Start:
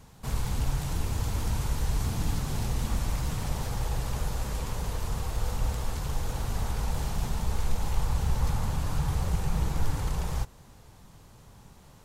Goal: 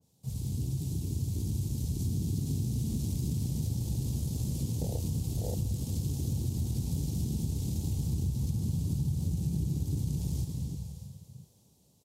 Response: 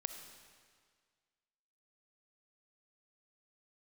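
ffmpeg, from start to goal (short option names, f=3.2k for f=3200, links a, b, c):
-filter_complex "[0:a]aecho=1:1:634:0.133,acrossover=split=710|3100[a][b][c];[b]acrusher=bits=3:mix=0:aa=0.5[d];[a][d][c]amix=inputs=3:normalize=0,dynaudnorm=f=520:g=9:m=9.5dB[e];[1:a]atrim=start_sample=2205,asetrate=36603,aresample=44100[f];[e][f]afir=irnorm=-1:irlink=0,asplit=2[g][h];[h]volume=25dB,asoftclip=hard,volume=-25dB,volume=-8.5dB[i];[g][i]amix=inputs=2:normalize=0,highpass=f=80:w=0.5412,highpass=f=80:w=1.3066,highshelf=f=3.9k:g=6,acompressor=threshold=-26dB:ratio=16,afwtdn=0.0501,adynamicequalizer=threshold=0.00112:dfrequency=1900:dqfactor=0.7:tfrequency=1900:tqfactor=0.7:attack=5:release=100:ratio=0.375:range=2.5:mode=boostabove:tftype=highshelf"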